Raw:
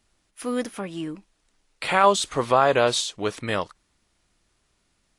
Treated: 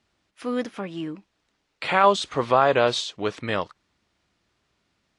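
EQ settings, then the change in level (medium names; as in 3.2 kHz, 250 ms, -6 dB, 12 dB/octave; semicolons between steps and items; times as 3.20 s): high-pass 72 Hz 12 dB/octave; low-pass 4.9 kHz 12 dB/octave; 0.0 dB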